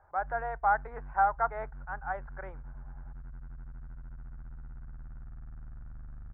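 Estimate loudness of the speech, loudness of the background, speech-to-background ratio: −32.0 LKFS, −48.0 LKFS, 16.0 dB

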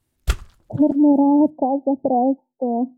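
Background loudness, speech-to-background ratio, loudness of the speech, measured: −28.0 LKFS, 9.5 dB, −18.5 LKFS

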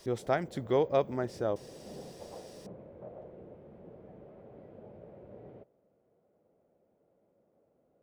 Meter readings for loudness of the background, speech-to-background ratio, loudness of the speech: −50.0 LKFS, 18.5 dB, −31.5 LKFS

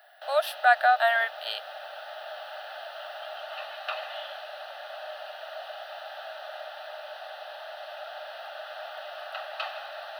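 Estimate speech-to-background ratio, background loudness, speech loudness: 14.5 dB, −39.0 LKFS, −24.5 LKFS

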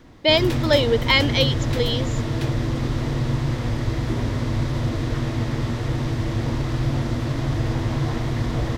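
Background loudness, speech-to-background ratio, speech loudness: −24.5 LKFS, 4.0 dB, −20.5 LKFS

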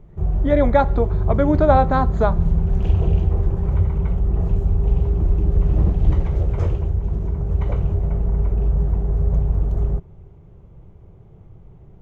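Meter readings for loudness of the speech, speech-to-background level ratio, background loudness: −20.0 LKFS, 1.5 dB, −21.5 LKFS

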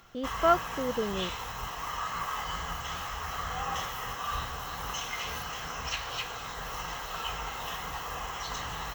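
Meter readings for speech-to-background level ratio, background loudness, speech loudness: 5.0 dB, −35.0 LKFS, −30.0 LKFS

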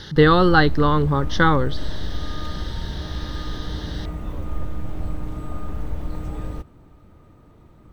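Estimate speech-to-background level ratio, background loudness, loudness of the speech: 14.0 dB, −32.0 LKFS, −18.0 LKFS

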